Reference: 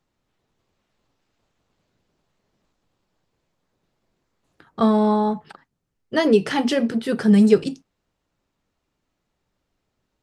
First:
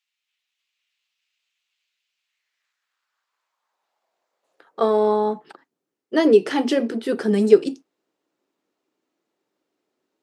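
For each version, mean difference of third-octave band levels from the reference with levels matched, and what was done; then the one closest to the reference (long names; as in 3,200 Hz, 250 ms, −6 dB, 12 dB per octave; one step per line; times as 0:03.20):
3.0 dB: high-pass filter sweep 2,600 Hz → 330 Hz, 0:02.14–0:05.27
level −2.5 dB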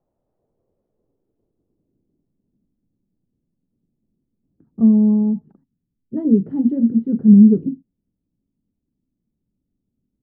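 11.0 dB: low-pass filter sweep 640 Hz → 240 Hz, 0:00.18–0:02.63
level −1 dB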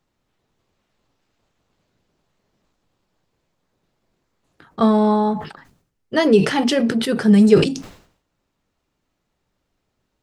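2.0 dB: level that may fall only so fast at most 99 dB per second
level +2 dB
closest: third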